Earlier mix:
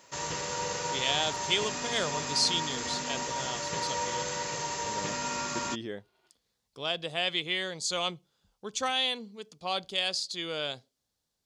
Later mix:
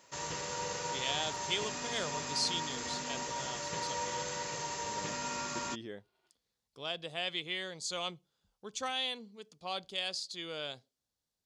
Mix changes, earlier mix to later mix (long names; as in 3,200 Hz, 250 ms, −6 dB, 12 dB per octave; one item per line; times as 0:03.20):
speech −6.5 dB
background −4.5 dB